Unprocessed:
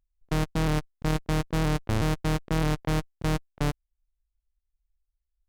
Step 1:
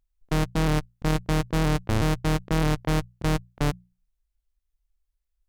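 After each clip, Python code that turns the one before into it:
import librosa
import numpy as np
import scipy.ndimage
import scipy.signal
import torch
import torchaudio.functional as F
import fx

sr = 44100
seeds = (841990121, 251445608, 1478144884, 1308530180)

y = fx.hum_notches(x, sr, base_hz=60, count=3)
y = F.gain(torch.from_numpy(y), 2.5).numpy()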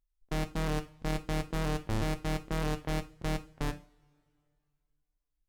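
y = fx.rev_double_slope(x, sr, seeds[0], early_s=0.35, late_s=2.5, knee_db=-27, drr_db=7.5)
y = F.gain(torch.from_numpy(y), -8.5).numpy()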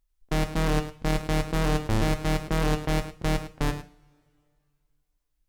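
y = x + 10.0 ** (-12.5 / 20.0) * np.pad(x, (int(105 * sr / 1000.0), 0))[:len(x)]
y = F.gain(torch.from_numpy(y), 7.0).numpy()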